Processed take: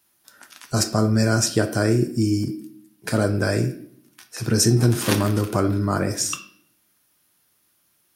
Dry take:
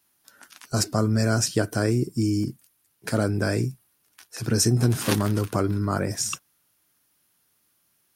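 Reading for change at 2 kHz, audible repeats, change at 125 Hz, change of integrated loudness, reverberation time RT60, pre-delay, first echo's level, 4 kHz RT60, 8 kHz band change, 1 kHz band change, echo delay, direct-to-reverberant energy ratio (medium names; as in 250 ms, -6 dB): +3.5 dB, no echo, +2.5 dB, +3.0 dB, 0.60 s, 3 ms, no echo, 0.55 s, +3.0 dB, +3.0 dB, no echo, 6.5 dB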